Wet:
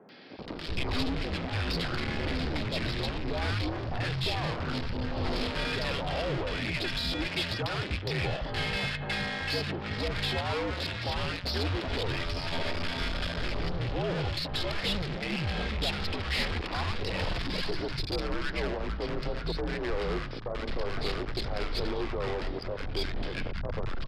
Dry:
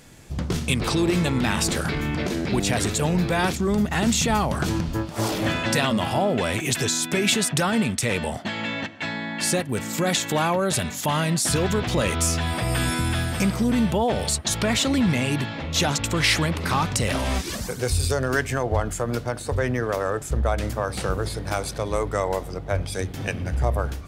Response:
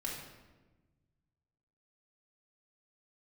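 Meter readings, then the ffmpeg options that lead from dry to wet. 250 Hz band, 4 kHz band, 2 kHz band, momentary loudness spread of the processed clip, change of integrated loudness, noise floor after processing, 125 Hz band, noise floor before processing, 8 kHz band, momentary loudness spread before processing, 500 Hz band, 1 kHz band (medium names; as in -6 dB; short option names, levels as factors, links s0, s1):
-11.5 dB, -5.0 dB, -6.5 dB, 4 LU, -8.5 dB, -37 dBFS, -8.5 dB, -35 dBFS, -24.0 dB, 7 LU, -8.5 dB, -9.5 dB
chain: -filter_complex "[0:a]alimiter=limit=0.133:level=0:latency=1:release=107,afreqshift=-76,aresample=11025,volume=44.7,asoftclip=hard,volume=0.0224,aresample=44100,aeval=exprs='0.0473*(cos(1*acos(clip(val(0)/0.0473,-1,1)))-cos(1*PI/2))+0.00668*(cos(3*acos(clip(val(0)/0.0473,-1,1)))-cos(3*PI/2))+0.00119*(cos(4*acos(clip(val(0)/0.0473,-1,1)))-cos(4*PI/2))+0.00075*(cos(6*acos(clip(val(0)/0.0473,-1,1)))-cos(6*PI/2))':c=same,acrossover=split=190|1100[s0][s1][s2];[s2]adelay=90[s3];[s0]adelay=380[s4];[s4][s1][s3]amix=inputs=3:normalize=0,volume=2.37"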